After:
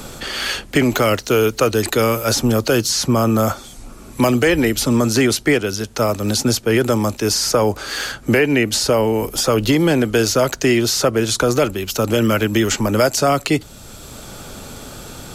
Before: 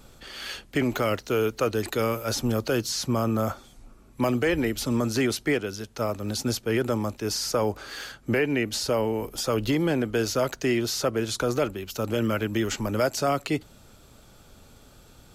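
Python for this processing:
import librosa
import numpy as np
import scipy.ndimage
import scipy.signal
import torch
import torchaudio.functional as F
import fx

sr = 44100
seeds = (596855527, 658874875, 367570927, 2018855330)

y = fx.peak_eq(x, sr, hz=8300.0, db=4.5, octaves=1.5)
y = fx.band_squash(y, sr, depth_pct=40)
y = F.gain(torch.from_numpy(y), 9.0).numpy()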